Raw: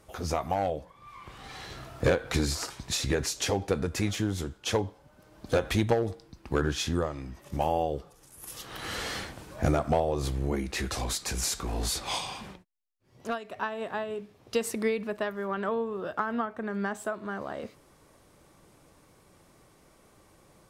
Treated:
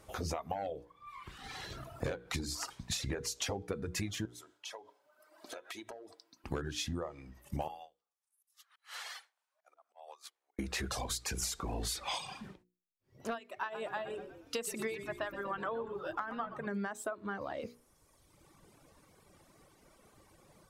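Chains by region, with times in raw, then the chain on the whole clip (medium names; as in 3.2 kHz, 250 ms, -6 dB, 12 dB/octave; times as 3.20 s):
4.25–6.44 s: high-pass 510 Hz + compression 8:1, threshold -42 dBFS + comb 3.1 ms, depth 40%
7.68–10.59 s: high-pass 770 Hz 24 dB/octave + slow attack 185 ms + upward expansion 2.5:1, over -47 dBFS
13.40–16.67 s: bass shelf 330 Hz -10 dB + frequency-shifting echo 119 ms, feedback 63%, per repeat -44 Hz, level -9 dB
whole clip: reverb removal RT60 1.7 s; hum notches 60/120/180/240/300/360/420/480 Hz; compression 12:1, threshold -33 dBFS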